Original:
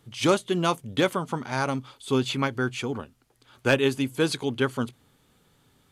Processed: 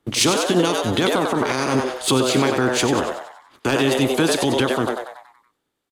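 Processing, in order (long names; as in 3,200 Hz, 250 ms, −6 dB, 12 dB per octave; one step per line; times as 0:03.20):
ceiling on every frequency bin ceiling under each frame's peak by 14 dB
parametric band 310 Hz +8 dB 0.78 octaves
in parallel at −5 dB: dead-zone distortion −39.5 dBFS
on the sum: dynamic equaliser 2,200 Hz, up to −5 dB, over −31 dBFS, Q 0.91
downward compressor 6 to 1, threshold −28 dBFS, peak gain reduction 16 dB
noise gate −52 dBFS, range −18 dB
on a send: echo with shifted repeats 94 ms, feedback 55%, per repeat +120 Hz, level −7 dB
on the sum: boost into a limiter +22.5 dB
multiband upward and downward expander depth 40%
level −7.5 dB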